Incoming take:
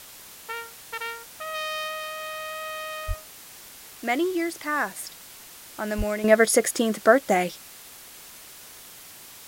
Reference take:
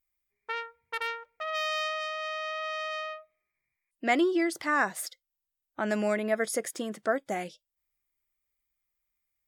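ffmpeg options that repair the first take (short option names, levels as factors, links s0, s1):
-filter_complex "[0:a]asplit=3[s0][s1][s2];[s0]afade=t=out:st=3.07:d=0.02[s3];[s1]highpass=f=140:w=0.5412,highpass=f=140:w=1.3066,afade=t=in:st=3.07:d=0.02,afade=t=out:st=3.19:d=0.02[s4];[s2]afade=t=in:st=3.19:d=0.02[s5];[s3][s4][s5]amix=inputs=3:normalize=0,asplit=3[s6][s7][s8];[s6]afade=t=out:st=5.97:d=0.02[s9];[s7]highpass=f=140:w=0.5412,highpass=f=140:w=1.3066,afade=t=in:st=5.97:d=0.02,afade=t=out:st=6.09:d=0.02[s10];[s8]afade=t=in:st=6.09:d=0.02[s11];[s9][s10][s11]amix=inputs=3:normalize=0,afwtdn=0.0063,asetnsamples=n=441:p=0,asendcmd='6.24 volume volume -11dB',volume=1"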